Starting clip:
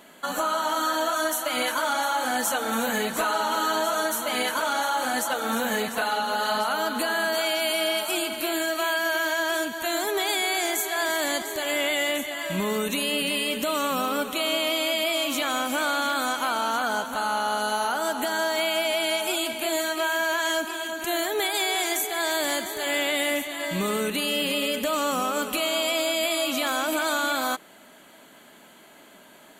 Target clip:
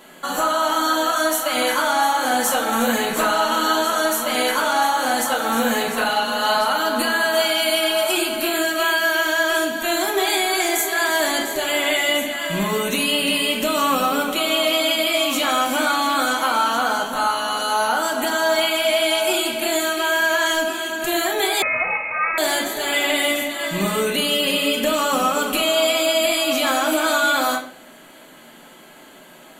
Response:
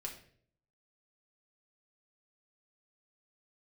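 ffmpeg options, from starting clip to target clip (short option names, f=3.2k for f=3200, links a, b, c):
-filter_complex "[1:a]atrim=start_sample=2205[a];[0:a][a]afir=irnorm=-1:irlink=0,asettb=1/sr,asplit=3[b][c][d];[b]atrim=end=21.624[e];[c]atrim=start=21.62:end=22.38,asetpts=PTS-STARTPTS,afade=t=in:d=0.004:c=qsin,afade=t=out:st=0.756:d=0.004:c=qsin,lowpass=f=2.5k:t=q:w=0.5098,lowpass=f=2.5k:t=q:w=0.6013,lowpass=f=2.5k:t=q:w=0.9,lowpass=f=2.5k:t=q:w=2.563,afreqshift=-2900[f];[d]atrim=start=22.376[g];[e][f]acrossfade=d=0.004:c1=hsin:c2=qsin[h];[h][g]acrossfade=d=0.004:c1=qsin:c2=hsin,volume=8dB"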